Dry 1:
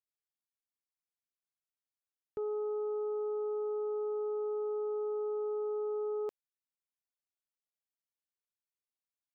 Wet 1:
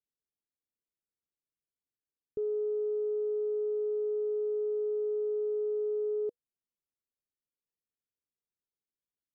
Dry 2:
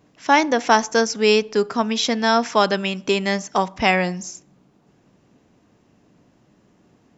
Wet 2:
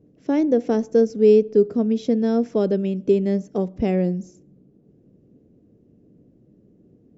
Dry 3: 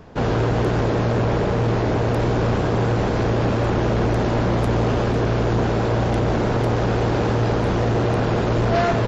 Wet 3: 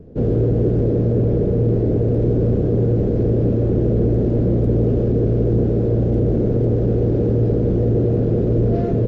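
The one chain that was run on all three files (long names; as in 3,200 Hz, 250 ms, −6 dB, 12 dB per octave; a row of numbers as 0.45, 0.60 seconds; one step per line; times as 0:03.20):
drawn EQ curve 480 Hz 0 dB, 940 Hz −26 dB, 1,400 Hz −24 dB
level +3.5 dB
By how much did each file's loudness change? +3.5, −1.0, +2.5 LU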